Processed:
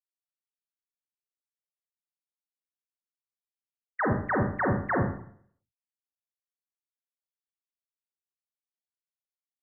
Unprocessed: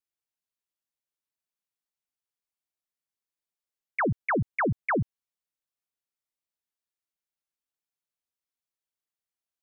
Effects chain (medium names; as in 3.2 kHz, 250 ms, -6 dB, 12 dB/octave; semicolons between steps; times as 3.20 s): formant shift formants -3 st; expander -42 dBFS; Schroeder reverb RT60 0.59 s, combs from 30 ms, DRR 0.5 dB